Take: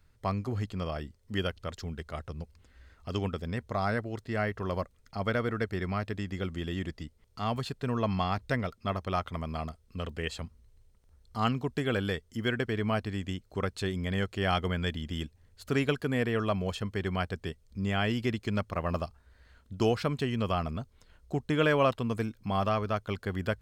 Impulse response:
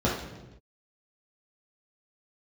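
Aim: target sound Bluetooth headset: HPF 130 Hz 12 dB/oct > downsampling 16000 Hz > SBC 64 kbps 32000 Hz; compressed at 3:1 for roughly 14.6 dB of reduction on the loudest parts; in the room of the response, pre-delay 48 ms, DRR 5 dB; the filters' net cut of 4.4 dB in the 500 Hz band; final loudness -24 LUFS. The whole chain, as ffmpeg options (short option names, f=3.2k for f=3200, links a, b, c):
-filter_complex "[0:a]equalizer=f=500:t=o:g=-5.5,acompressor=threshold=-44dB:ratio=3,asplit=2[a][b];[1:a]atrim=start_sample=2205,adelay=48[c];[b][c]afir=irnorm=-1:irlink=0,volume=-18.5dB[d];[a][d]amix=inputs=2:normalize=0,highpass=130,aresample=16000,aresample=44100,volume=18.5dB" -ar 32000 -c:a sbc -b:a 64k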